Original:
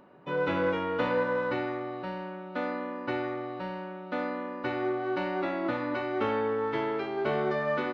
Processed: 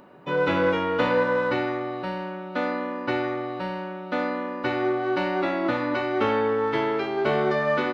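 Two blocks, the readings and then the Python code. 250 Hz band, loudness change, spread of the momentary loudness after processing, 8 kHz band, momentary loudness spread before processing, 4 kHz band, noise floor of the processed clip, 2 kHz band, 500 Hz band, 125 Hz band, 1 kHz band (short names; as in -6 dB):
+5.5 dB, +5.5 dB, 8 LU, n/a, 8 LU, +7.5 dB, -36 dBFS, +6.5 dB, +5.5 dB, +5.5 dB, +6.0 dB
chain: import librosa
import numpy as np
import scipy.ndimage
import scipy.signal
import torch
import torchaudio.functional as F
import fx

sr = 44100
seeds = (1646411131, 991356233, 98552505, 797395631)

y = fx.high_shelf(x, sr, hz=4200.0, db=6.0)
y = y * librosa.db_to_amplitude(5.5)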